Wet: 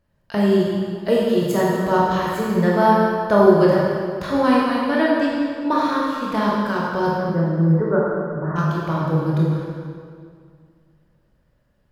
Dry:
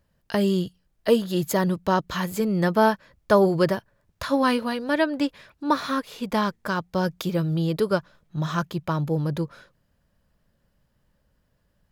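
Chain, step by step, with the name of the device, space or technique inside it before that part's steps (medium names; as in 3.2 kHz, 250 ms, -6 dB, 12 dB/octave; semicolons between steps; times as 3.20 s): 7.08–8.56 s: steep low-pass 2 kHz 96 dB/octave; peaking EQ 190 Hz -3 dB 0.24 oct; swimming-pool hall (reverberation RT60 2.1 s, pre-delay 19 ms, DRR -5 dB; treble shelf 3.9 kHz -7.5 dB); trim -1 dB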